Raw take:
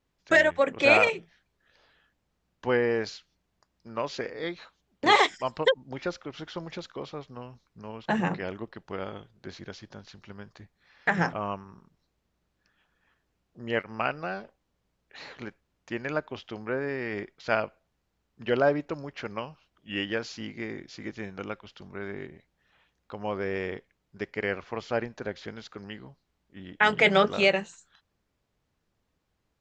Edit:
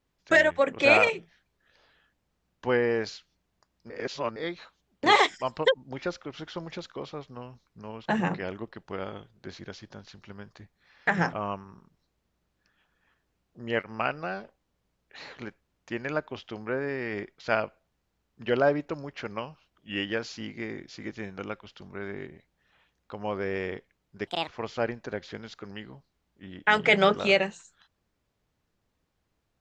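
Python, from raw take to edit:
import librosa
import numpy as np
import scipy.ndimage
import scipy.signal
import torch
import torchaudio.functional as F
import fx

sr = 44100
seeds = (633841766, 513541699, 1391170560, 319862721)

y = fx.edit(x, sr, fx.reverse_span(start_s=3.9, length_s=0.46),
    fx.speed_span(start_s=24.27, length_s=0.34, speed=1.65), tone=tone)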